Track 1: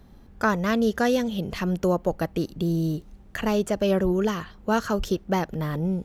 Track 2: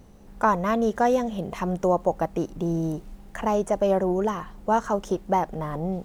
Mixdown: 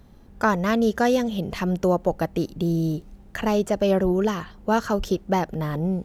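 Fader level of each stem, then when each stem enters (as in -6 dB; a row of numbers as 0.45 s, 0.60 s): -0.5 dB, -10.0 dB; 0.00 s, 0.00 s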